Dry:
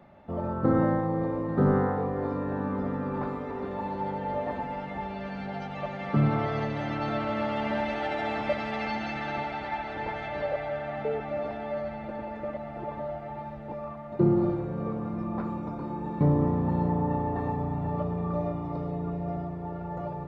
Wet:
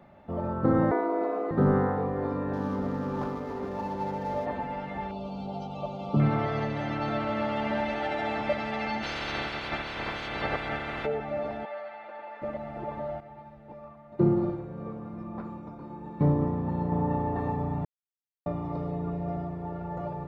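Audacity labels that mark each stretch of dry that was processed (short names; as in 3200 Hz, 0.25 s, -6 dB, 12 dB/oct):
0.910000	1.510000	frequency shift +170 Hz
2.530000	4.460000	median filter over 15 samples
5.110000	6.200000	Butterworth band-stop 1800 Hz, Q 0.97
9.020000	11.050000	spectral limiter ceiling under each frame's peak by 23 dB
11.650000	12.420000	BPF 770–3900 Hz
13.200000	16.920000	upward expander, over -39 dBFS
17.850000	18.460000	mute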